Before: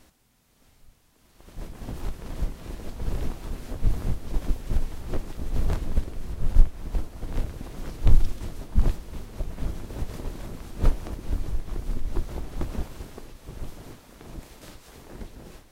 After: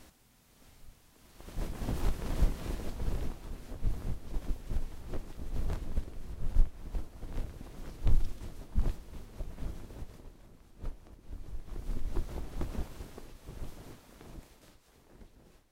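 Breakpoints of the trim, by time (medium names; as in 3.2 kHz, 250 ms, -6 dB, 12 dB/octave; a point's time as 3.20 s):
2.64 s +1 dB
3.42 s -9 dB
9.83 s -9 dB
10.35 s -19 dB
11.20 s -19 dB
11.96 s -6 dB
14.22 s -6 dB
14.77 s -15 dB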